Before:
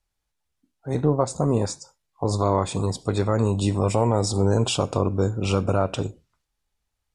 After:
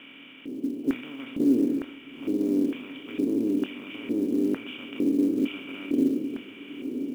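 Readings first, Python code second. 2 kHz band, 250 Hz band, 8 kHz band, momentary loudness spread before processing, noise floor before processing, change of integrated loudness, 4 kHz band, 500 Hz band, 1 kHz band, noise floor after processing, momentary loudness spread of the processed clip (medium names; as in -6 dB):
-1.5 dB, +3.0 dB, under -20 dB, 9 LU, -79 dBFS, -4.0 dB, -9.0 dB, -8.5 dB, -22.5 dB, -47 dBFS, 13 LU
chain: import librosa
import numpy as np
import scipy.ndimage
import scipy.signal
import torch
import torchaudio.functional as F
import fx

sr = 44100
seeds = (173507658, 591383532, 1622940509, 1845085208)

p1 = fx.bin_compress(x, sr, power=0.2)
p2 = scipy.signal.sosfilt(scipy.signal.butter(2, 110.0, 'highpass', fs=sr, output='sos'), p1)
p3 = fx.peak_eq(p2, sr, hz=2200.0, db=12.5, octaves=1.6)
p4 = fx.rider(p3, sr, range_db=5, speed_s=2.0)
p5 = p3 + (p4 * librosa.db_to_amplitude(-1.5))
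p6 = fx.formant_cascade(p5, sr, vowel='i')
p7 = fx.small_body(p6, sr, hz=(260.0, 1900.0), ring_ms=75, db=8)
p8 = fx.filter_lfo_bandpass(p7, sr, shape='square', hz=1.1, low_hz=370.0, high_hz=1600.0, q=3.5)
p9 = fx.quant_float(p8, sr, bits=4)
p10 = fx.doubler(p9, sr, ms=25.0, db=-11.5)
p11 = fx.echo_diffused(p10, sr, ms=918, feedback_pct=44, wet_db=-13.0)
y = p11 * librosa.db_to_amplitude(-1.0)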